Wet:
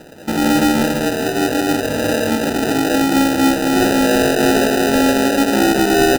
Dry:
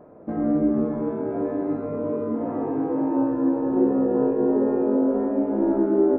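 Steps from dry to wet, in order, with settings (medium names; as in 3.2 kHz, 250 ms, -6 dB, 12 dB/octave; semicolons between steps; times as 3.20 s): sine folder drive 5 dB, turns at -9 dBFS; on a send: delay 382 ms -11.5 dB; on the sum: sample-and-hold 40×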